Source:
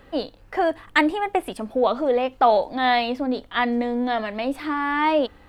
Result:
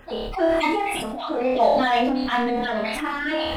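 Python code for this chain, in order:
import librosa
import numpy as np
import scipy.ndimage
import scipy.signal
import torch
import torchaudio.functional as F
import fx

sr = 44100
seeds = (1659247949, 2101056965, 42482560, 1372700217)

p1 = fx.spec_dropout(x, sr, seeds[0], share_pct=37)
p2 = np.clip(p1, -10.0 ** (-24.0 / 20.0), 10.0 ** (-24.0 / 20.0))
p3 = p1 + (p2 * 10.0 ** (-6.5 / 20.0))
p4 = fx.stretch_vocoder_free(p3, sr, factor=0.65)
p5 = p4 + fx.room_flutter(p4, sr, wall_m=4.7, rt60_s=0.41, dry=0)
y = fx.sustainer(p5, sr, db_per_s=22.0)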